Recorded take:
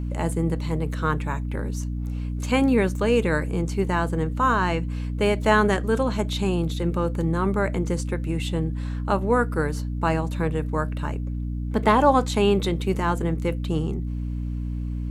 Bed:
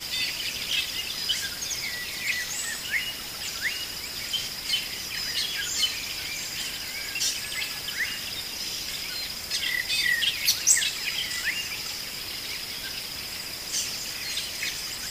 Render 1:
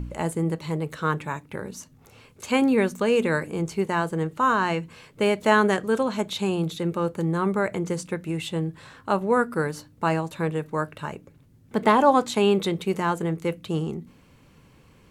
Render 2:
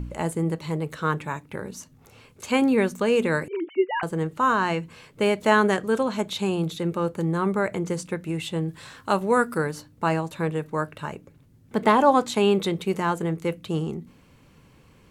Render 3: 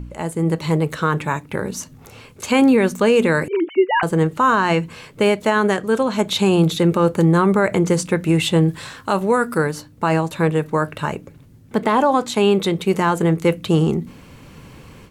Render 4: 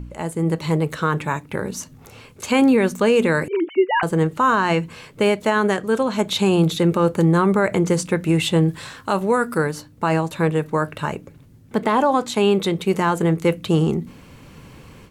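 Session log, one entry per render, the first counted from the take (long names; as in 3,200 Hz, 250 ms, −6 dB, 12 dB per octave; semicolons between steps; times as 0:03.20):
hum removal 60 Hz, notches 5
0:03.48–0:04.03: three sine waves on the formant tracks; 0:08.68–0:09.58: high-shelf EQ 2,700 Hz +8.5 dB
automatic gain control gain up to 13.5 dB; brickwall limiter −6.5 dBFS, peak gain reduction 6 dB
level −1.5 dB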